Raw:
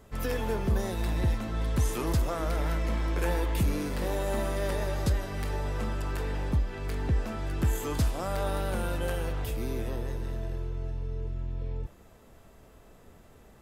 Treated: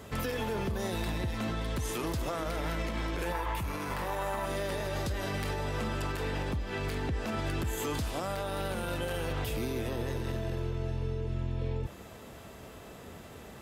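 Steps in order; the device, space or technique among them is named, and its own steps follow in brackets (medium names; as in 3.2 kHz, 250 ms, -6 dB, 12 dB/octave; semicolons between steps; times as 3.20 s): broadcast voice chain (high-pass 75 Hz 12 dB/octave; de-esser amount 65%; compression 5:1, threshold -36 dBFS, peak gain reduction 12 dB; peaking EQ 3.2 kHz +4 dB 1.4 oct; peak limiter -33 dBFS, peak gain reduction 7.5 dB); 3.32–4.46 s: ten-band graphic EQ 250 Hz -8 dB, 500 Hz -4 dB, 1 kHz +9 dB, 4 kHz -5 dB, 8 kHz -3 dB; trim +8.5 dB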